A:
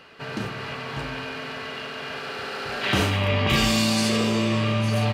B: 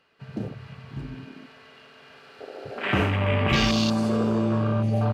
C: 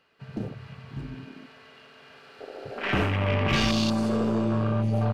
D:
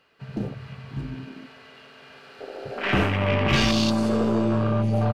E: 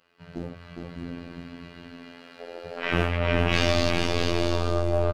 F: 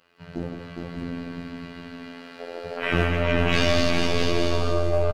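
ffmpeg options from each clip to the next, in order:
-af "afwtdn=0.0562"
-af "aeval=exprs='(tanh(5.62*val(0)+0.35)-tanh(0.35))/5.62':c=same"
-filter_complex "[0:a]asplit=2[a][b];[b]adelay=15,volume=-12dB[c];[a][c]amix=inputs=2:normalize=0,volume=3dB"
-af "aecho=1:1:410|656|803.6|892.2|945.3:0.631|0.398|0.251|0.158|0.1,afftfilt=real='hypot(re,im)*cos(PI*b)':imag='0':win_size=2048:overlap=0.75"
-filter_complex "[0:a]asplit=2[a][b];[b]volume=21.5dB,asoftclip=hard,volume=-21.5dB,volume=-6dB[c];[a][c]amix=inputs=2:normalize=0,aecho=1:1:167:0.422"

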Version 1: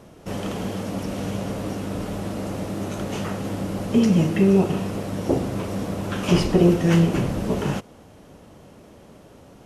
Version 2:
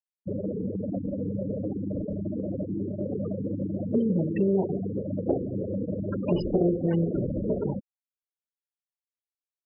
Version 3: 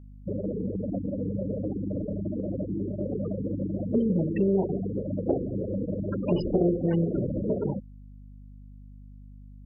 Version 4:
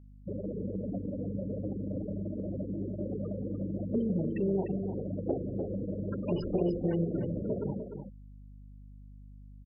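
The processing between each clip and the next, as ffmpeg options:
-af "afftfilt=real='re*gte(hypot(re,im),0.141)':imag='im*gte(hypot(re,im),0.141)':win_size=1024:overlap=0.75,equalizer=f=570:t=o:w=2.1:g=8,acompressor=threshold=-30dB:ratio=2"
-af "aeval=exprs='val(0)+0.00562*(sin(2*PI*50*n/s)+sin(2*PI*2*50*n/s)/2+sin(2*PI*3*50*n/s)/3+sin(2*PI*4*50*n/s)/4+sin(2*PI*5*50*n/s)/5)':c=same"
-af "aecho=1:1:299:0.398,volume=-6dB"

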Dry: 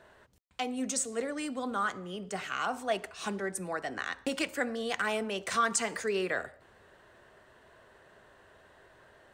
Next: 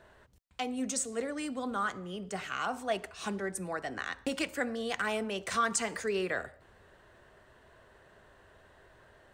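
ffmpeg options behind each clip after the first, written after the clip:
-af "lowshelf=f=99:g=9.5,volume=-1.5dB"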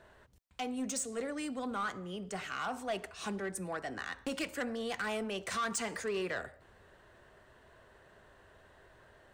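-af "asoftclip=type=tanh:threshold=-28dB,volume=-1dB"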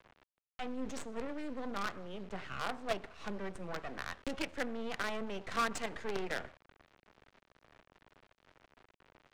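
-filter_complex "[0:a]acrusher=bits=6:dc=4:mix=0:aa=0.000001,acrossover=split=380[a][b];[b]adynamicsmooth=sensitivity=3.5:basefreq=3.2k[c];[a][c]amix=inputs=2:normalize=0,volume=1.5dB"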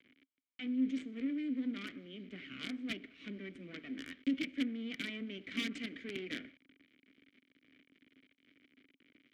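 -filter_complex "[0:a]aeval=exprs='(mod(18.8*val(0)+1,2)-1)/18.8':c=same,asplit=3[a][b][c];[a]bandpass=f=270:t=q:w=8,volume=0dB[d];[b]bandpass=f=2.29k:t=q:w=8,volume=-6dB[e];[c]bandpass=f=3.01k:t=q:w=8,volume=-9dB[f];[d][e][f]amix=inputs=3:normalize=0,volume=11.5dB"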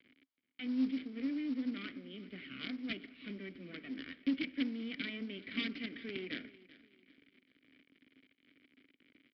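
-af "aresample=11025,acrusher=bits=6:mode=log:mix=0:aa=0.000001,aresample=44100,aecho=1:1:387|774|1161:0.106|0.036|0.0122"

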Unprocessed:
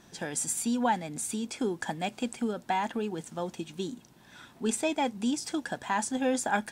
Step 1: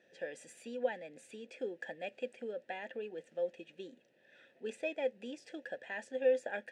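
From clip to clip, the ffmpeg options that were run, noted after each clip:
-filter_complex "[0:a]asplit=3[a][b][c];[a]bandpass=f=530:t=q:w=8,volume=0dB[d];[b]bandpass=f=1.84k:t=q:w=8,volume=-6dB[e];[c]bandpass=f=2.48k:t=q:w=8,volume=-9dB[f];[d][e][f]amix=inputs=3:normalize=0,volume=3dB"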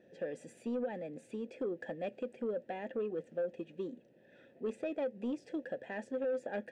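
-af "tiltshelf=f=710:g=9.5,alimiter=level_in=5.5dB:limit=-24dB:level=0:latency=1:release=102,volume=-5.5dB,asoftclip=type=tanh:threshold=-31.5dB,volume=3.5dB"

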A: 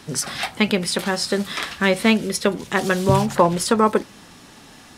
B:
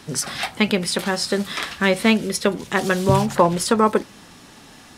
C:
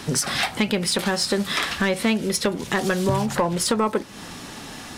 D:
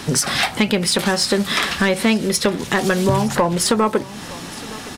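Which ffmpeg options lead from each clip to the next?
-af anull
-af "acompressor=threshold=-28dB:ratio=3,asoftclip=type=tanh:threshold=-19.5dB,volume=8dB"
-af "aecho=1:1:916:0.106,volume=4.5dB"

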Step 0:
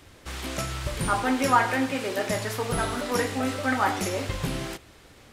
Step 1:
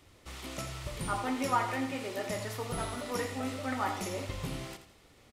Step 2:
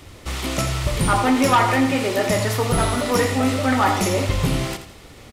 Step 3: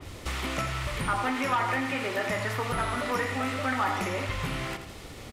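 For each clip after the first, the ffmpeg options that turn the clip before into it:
-af "bandreject=f=1.6k:w=9.1,aecho=1:1:83|166|249|332:0.282|0.101|0.0365|0.0131,volume=-8.5dB"
-filter_complex "[0:a]lowshelf=f=190:g=3.5,asplit=2[a][b];[b]aeval=exprs='0.168*sin(PI/2*3.16*val(0)/0.168)':c=same,volume=-11.5dB[c];[a][c]amix=inputs=2:normalize=0,volume=8.5dB"
-filter_complex "[0:a]acrossover=split=1100|2600[a][b][c];[a]acompressor=threshold=-33dB:ratio=4[d];[b]acompressor=threshold=-28dB:ratio=4[e];[c]acompressor=threshold=-42dB:ratio=4[f];[d][e][f]amix=inputs=3:normalize=0,adynamicequalizer=threshold=0.00891:dfrequency=2900:dqfactor=0.7:tfrequency=2900:tqfactor=0.7:attack=5:release=100:ratio=0.375:range=2:mode=cutabove:tftype=highshelf"

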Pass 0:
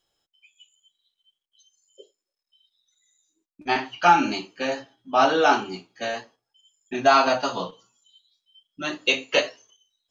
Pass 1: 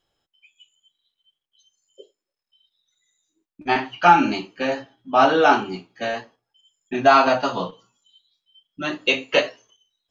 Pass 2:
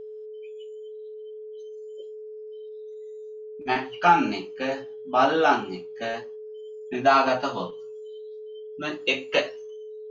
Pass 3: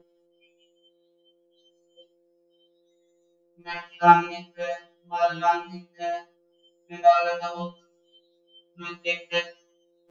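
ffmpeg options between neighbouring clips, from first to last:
-af "bass=f=250:g=3,treble=f=4k:g=-8,volume=3dB"
-af "aeval=exprs='val(0)+0.0251*sin(2*PI*430*n/s)':c=same,volume=-4.5dB"
-af "afftfilt=real='re*2.83*eq(mod(b,8),0)':imag='im*2.83*eq(mod(b,8),0)':win_size=2048:overlap=0.75,volume=-1dB"

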